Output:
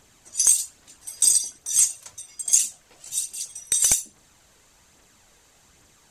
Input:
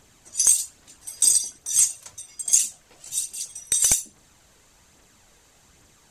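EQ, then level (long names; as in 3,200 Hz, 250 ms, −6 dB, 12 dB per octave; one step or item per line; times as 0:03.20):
low-shelf EQ 390 Hz −2.5 dB
0.0 dB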